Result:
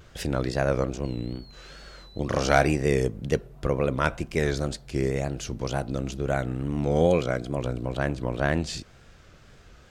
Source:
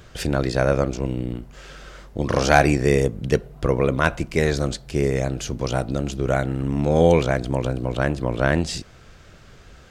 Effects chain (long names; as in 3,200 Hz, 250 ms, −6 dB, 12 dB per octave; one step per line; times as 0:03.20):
0:01.03–0:02.18: steady tone 4,200 Hz −46 dBFS
tape wow and flutter 92 cents
0:07.06–0:07.58: notch comb filter 900 Hz
level −5 dB